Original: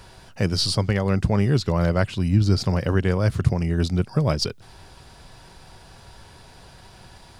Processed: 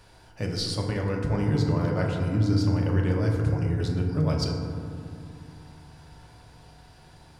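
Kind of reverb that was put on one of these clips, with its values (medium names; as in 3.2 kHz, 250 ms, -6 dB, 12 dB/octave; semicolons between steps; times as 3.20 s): FDN reverb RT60 2.5 s, low-frequency decay 1.45×, high-frequency decay 0.3×, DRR -0.5 dB; trim -9 dB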